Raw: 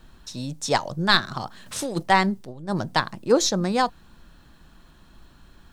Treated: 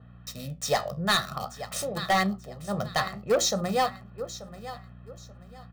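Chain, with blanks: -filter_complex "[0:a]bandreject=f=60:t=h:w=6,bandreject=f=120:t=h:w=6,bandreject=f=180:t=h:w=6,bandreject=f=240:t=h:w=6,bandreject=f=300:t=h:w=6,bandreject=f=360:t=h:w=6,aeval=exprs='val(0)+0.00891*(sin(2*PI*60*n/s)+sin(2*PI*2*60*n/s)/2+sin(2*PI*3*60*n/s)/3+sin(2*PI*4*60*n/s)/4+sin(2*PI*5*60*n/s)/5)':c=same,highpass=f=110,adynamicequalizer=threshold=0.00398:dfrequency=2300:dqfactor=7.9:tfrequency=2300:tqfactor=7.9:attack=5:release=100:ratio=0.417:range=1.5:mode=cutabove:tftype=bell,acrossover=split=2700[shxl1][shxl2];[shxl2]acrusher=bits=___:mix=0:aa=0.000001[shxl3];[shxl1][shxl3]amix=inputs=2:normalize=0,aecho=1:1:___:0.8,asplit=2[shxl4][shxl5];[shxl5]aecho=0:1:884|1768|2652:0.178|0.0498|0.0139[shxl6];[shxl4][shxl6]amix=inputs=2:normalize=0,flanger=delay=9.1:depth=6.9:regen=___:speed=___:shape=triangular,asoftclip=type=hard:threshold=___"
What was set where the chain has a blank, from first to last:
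5, 1.6, -65, 0.5, -17.5dB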